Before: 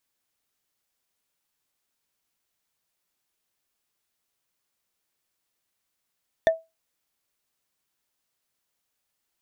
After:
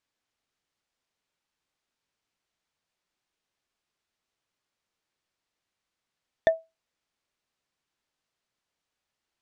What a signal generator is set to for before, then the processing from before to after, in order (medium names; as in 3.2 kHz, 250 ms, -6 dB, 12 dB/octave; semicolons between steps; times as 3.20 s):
wood hit, lowest mode 651 Hz, decay 0.22 s, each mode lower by 7.5 dB, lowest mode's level -11.5 dB
distance through air 81 m